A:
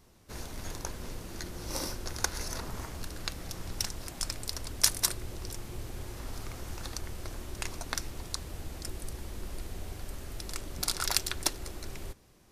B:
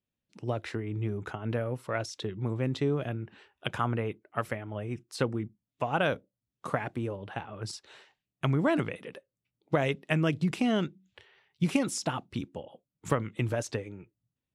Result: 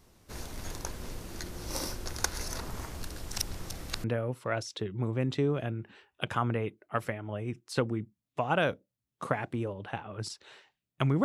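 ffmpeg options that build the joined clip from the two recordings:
ffmpeg -i cue0.wav -i cue1.wav -filter_complex "[0:a]apad=whole_dur=11.24,atrim=end=11.24,asplit=2[link_01][link_02];[link_01]atrim=end=3.182[link_03];[link_02]atrim=start=3.178:end=4.042,asetpts=PTS-STARTPTS,areverse[link_04];[1:a]atrim=start=1.468:end=8.67[link_05];[link_03][link_04]acrossfade=duration=0.004:curve1=hsin:curve2=hsin[link_06];[link_06][link_05]acrossfade=duration=0.004:curve1=hsin:curve2=hsin" out.wav

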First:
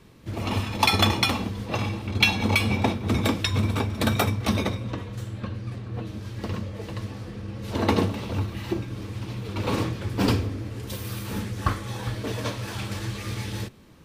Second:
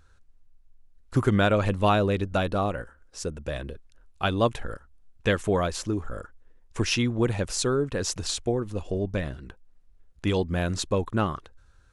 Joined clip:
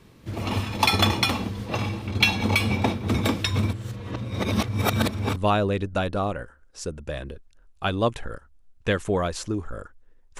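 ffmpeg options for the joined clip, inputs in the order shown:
ffmpeg -i cue0.wav -i cue1.wav -filter_complex "[0:a]apad=whole_dur=10.39,atrim=end=10.39,asplit=2[link_01][link_02];[link_01]atrim=end=3.732[link_03];[link_02]atrim=start=3.728:end=5.362,asetpts=PTS-STARTPTS,areverse[link_04];[1:a]atrim=start=1.748:end=6.78[link_05];[link_03][link_04]acrossfade=duration=0.004:curve1=hsin:curve2=hsin[link_06];[link_06][link_05]acrossfade=duration=0.004:curve1=hsin:curve2=hsin" out.wav

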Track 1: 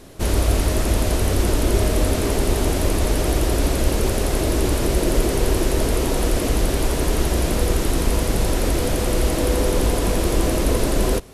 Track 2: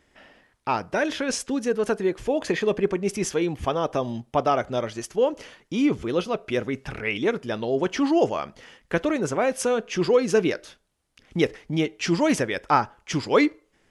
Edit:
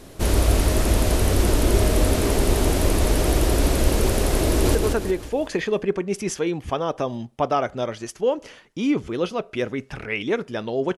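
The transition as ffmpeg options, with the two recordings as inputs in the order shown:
ffmpeg -i cue0.wav -i cue1.wav -filter_complex "[0:a]apad=whole_dur=10.97,atrim=end=10.97,atrim=end=4.752[link_01];[1:a]atrim=start=1.698:end=7.92[link_02];[link_01][link_02]acrossfade=duration=0.004:curve1=hsin:curve2=hsin,asplit=2[link_03][link_04];[link_04]afade=type=in:start_time=4.47:duration=0.01,afade=type=out:start_time=4.75:duration=0.01,aecho=0:1:180|360|540|720|900|1080:0.630957|0.283931|0.127769|0.057496|0.0258732|0.0116429[link_05];[link_03][link_05]amix=inputs=2:normalize=0" out.wav

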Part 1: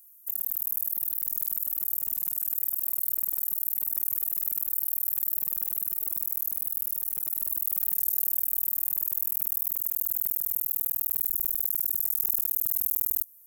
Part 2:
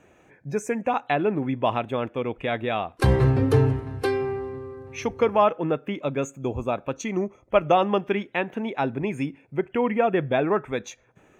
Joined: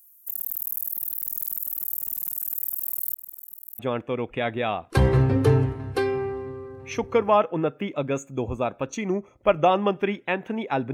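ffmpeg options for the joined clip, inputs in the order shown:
ffmpeg -i cue0.wav -i cue1.wav -filter_complex "[0:a]asettb=1/sr,asplit=3[link_01][link_02][link_03];[link_01]atrim=end=3.144[link_04];[link_02]atrim=start=3.14:end=3.79,asetpts=PTS-STARTPTS,afade=type=in:duration=0.004:curve=qsin,afade=type=out:start_time=0.646:duration=0.004:curve=qsin,agate=range=-33dB:threshold=-22dB:ratio=3:release=100:detection=peak[link_05];[link_03]atrim=start=3.786[link_06];[link_04][link_05]acrossfade=duration=0.004:curve1=hsin:curve2=qsin[link_07];[link_07][link_06]acrossfade=duration=0.004:curve1=qsin:curve2=hsin,apad=whole_dur=10.93,atrim=end=10.93,atrim=end=3.792[link_08];[1:a]atrim=start=1.858:end=9[link_09];[link_08][link_09]acrossfade=duration=0.004:curve1=hsin:curve2=hsin" out.wav

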